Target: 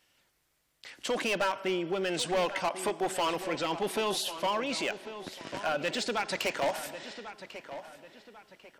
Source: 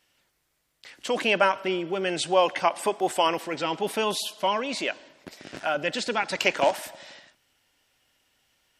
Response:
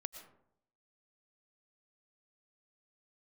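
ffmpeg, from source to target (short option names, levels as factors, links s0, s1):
-filter_complex "[0:a]asplit=2[s0][s1];[s1]acompressor=threshold=0.0316:ratio=6,volume=0.75[s2];[s0][s2]amix=inputs=2:normalize=0,asoftclip=type=hard:threshold=0.112,asplit=2[s3][s4];[s4]adelay=1095,lowpass=f=3500:p=1,volume=0.251,asplit=2[s5][s6];[s6]adelay=1095,lowpass=f=3500:p=1,volume=0.39,asplit=2[s7][s8];[s8]adelay=1095,lowpass=f=3500:p=1,volume=0.39,asplit=2[s9][s10];[s10]adelay=1095,lowpass=f=3500:p=1,volume=0.39[s11];[s3][s5][s7][s9][s11]amix=inputs=5:normalize=0,volume=0.531"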